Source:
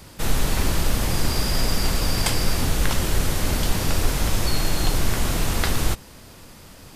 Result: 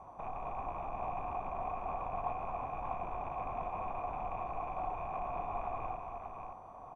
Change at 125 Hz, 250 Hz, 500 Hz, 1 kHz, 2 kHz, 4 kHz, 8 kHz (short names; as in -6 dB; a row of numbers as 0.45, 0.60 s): -25.0 dB, -23.5 dB, -10.5 dB, -3.5 dB, -22.5 dB, under -40 dB, under -40 dB